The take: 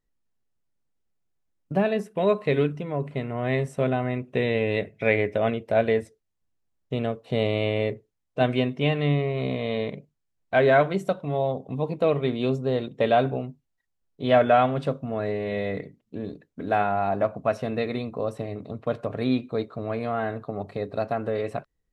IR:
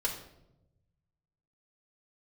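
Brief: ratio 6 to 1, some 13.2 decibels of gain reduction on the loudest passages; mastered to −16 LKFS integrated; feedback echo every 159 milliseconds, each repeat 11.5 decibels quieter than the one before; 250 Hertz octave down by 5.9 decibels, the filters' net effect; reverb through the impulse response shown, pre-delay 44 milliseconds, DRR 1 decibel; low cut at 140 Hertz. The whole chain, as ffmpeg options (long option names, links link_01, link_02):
-filter_complex "[0:a]highpass=140,equalizer=frequency=250:width_type=o:gain=-6.5,acompressor=threshold=-29dB:ratio=6,aecho=1:1:159|318|477:0.266|0.0718|0.0194,asplit=2[link_01][link_02];[1:a]atrim=start_sample=2205,adelay=44[link_03];[link_02][link_03]afir=irnorm=-1:irlink=0,volume=-6dB[link_04];[link_01][link_04]amix=inputs=2:normalize=0,volume=15.5dB"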